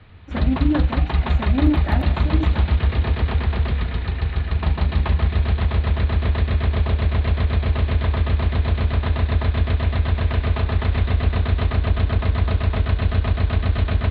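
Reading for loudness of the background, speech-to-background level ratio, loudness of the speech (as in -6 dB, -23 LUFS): -21.0 LUFS, -5.0 dB, -26.0 LUFS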